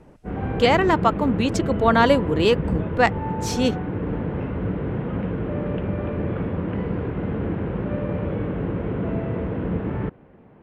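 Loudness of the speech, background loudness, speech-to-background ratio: -21.0 LUFS, -27.0 LUFS, 6.0 dB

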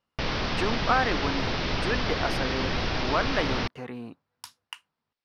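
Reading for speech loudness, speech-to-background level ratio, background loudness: -31.0 LUFS, -2.0 dB, -29.0 LUFS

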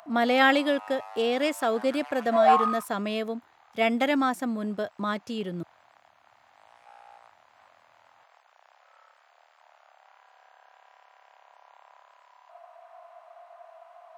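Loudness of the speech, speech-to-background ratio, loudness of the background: -27.0 LUFS, 1.5 dB, -28.5 LUFS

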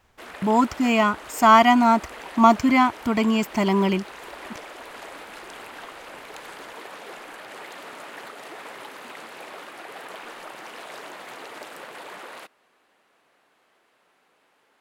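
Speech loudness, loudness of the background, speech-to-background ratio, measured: -19.5 LUFS, -39.5 LUFS, 20.0 dB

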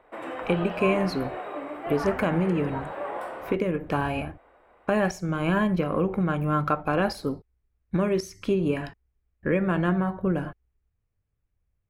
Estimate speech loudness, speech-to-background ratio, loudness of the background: -26.5 LUFS, 8.0 dB, -34.5 LUFS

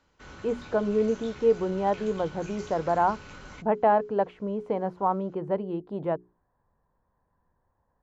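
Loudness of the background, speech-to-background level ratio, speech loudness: -45.5 LUFS, 18.0 dB, -27.5 LUFS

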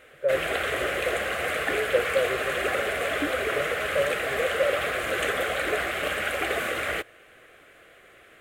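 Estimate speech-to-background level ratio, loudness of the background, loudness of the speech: -4.0 dB, -27.0 LUFS, -31.0 LUFS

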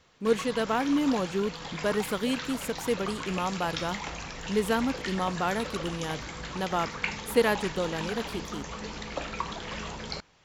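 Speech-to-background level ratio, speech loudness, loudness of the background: 6.5 dB, -30.0 LUFS, -36.5 LUFS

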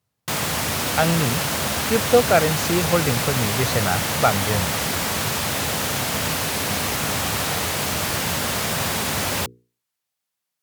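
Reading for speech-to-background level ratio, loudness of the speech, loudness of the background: -0.5 dB, -22.5 LUFS, -22.0 LUFS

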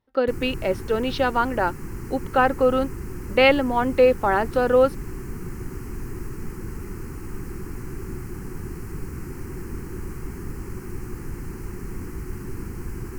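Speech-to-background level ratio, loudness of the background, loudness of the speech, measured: 14.0 dB, -35.5 LUFS, -21.5 LUFS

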